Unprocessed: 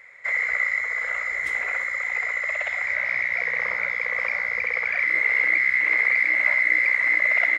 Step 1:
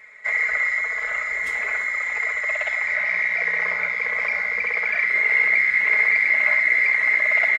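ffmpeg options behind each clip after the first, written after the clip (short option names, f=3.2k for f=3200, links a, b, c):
-af "aecho=1:1:4.7:0.89"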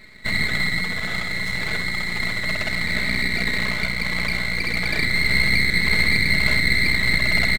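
-af "asubboost=boost=10:cutoff=67,aeval=exprs='max(val(0),0)':c=same,equalizer=f=190:w=0.75:g=4.5,volume=3.5dB"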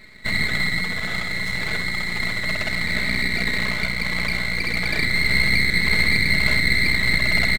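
-af anull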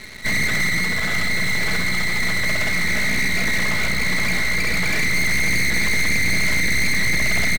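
-filter_complex "[0:a]asplit=2[a][b];[b]aecho=0:1:885:0.316[c];[a][c]amix=inputs=2:normalize=0,asoftclip=type=tanh:threshold=-20.5dB,acrusher=bits=6:mix=0:aa=0.5,volume=7.5dB"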